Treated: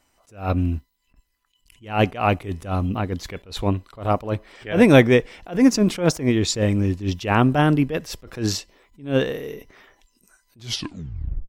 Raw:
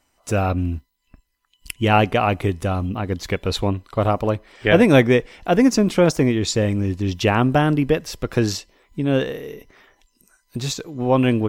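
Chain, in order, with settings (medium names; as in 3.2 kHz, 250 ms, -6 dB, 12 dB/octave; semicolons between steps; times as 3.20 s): tape stop on the ending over 0.93 s; attacks held to a fixed rise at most 170 dB/s; trim +1 dB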